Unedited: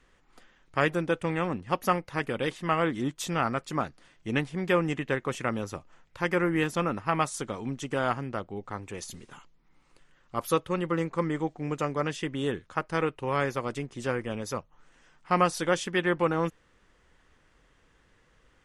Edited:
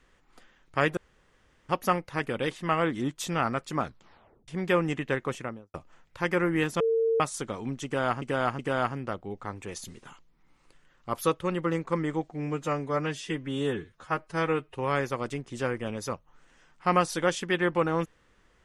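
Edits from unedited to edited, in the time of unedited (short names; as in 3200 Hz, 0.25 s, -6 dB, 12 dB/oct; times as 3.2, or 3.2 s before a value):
0.97–1.69 room tone
3.82 tape stop 0.66 s
5.24–5.74 studio fade out
6.8–7.2 bleep 453 Hz -21.5 dBFS
7.85–8.22 loop, 3 plays
11.57–13.2 stretch 1.5×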